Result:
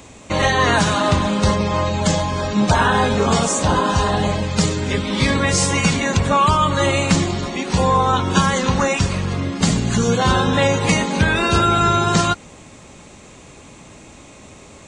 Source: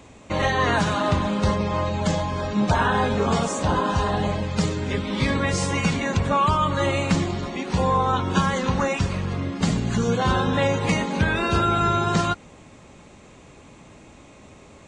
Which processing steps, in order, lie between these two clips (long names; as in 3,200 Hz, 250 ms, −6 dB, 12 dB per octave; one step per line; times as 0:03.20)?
high-shelf EQ 4,800 Hz +9.5 dB
level +4.5 dB